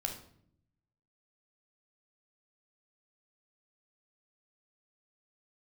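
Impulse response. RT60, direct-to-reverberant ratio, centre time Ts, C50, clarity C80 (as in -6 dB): 0.65 s, 2.5 dB, 19 ms, 7.5 dB, 12.0 dB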